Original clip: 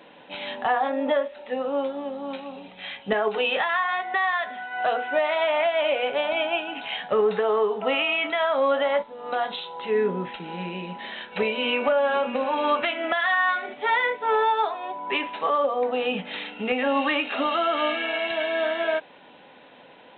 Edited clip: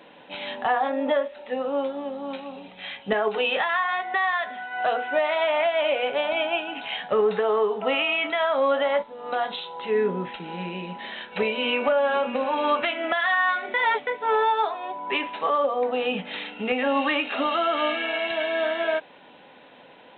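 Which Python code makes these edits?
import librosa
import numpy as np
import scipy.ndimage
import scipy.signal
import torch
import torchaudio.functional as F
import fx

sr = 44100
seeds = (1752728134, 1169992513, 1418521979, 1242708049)

y = fx.edit(x, sr, fx.reverse_span(start_s=13.74, length_s=0.33), tone=tone)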